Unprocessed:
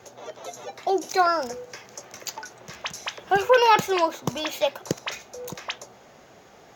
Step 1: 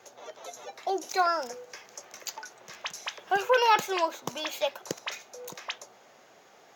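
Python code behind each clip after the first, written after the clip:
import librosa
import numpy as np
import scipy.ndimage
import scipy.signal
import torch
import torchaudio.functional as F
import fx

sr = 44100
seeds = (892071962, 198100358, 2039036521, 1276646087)

y = fx.highpass(x, sr, hz=490.0, slope=6)
y = F.gain(torch.from_numpy(y), -3.5).numpy()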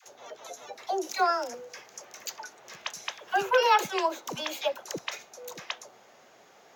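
y = fx.dispersion(x, sr, late='lows', ms=65.0, hz=570.0)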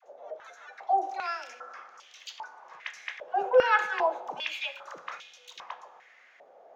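y = fx.transient(x, sr, attack_db=-5, sustain_db=0)
y = fx.rev_fdn(y, sr, rt60_s=1.4, lf_ratio=1.55, hf_ratio=0.85, size_ms=12.0, drr_db=9.5)
y = fx.filter_held_bandpass(y, sr, hz=2.5, low_hz=610.0, high_hz=3200.0)
y = F.gain(torch.from_numpy(y), 9.0).numpy()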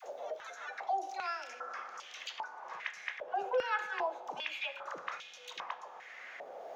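y = fx.band_squash(x, sr, depth_pct=70)
y = F.gain(torch.from_numpy(y), -4.5).numpy()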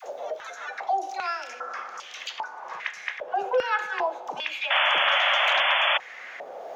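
y = fx.spec_paint(x, sr, seeds[0], shape='noise', start_s=4.7, length_s=1.28, low_hz=540.0, high_hz=3500.0, level_db=-30.0)
y = F.gain(torch.from_numpy(y), 8.0).numpy()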